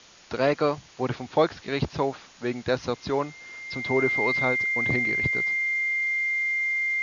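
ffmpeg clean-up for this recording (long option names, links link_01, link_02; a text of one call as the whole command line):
ffmpeg -i in.wav -af "bandreject=frequency=2100:width=30,afwtdn=0.004" out.wav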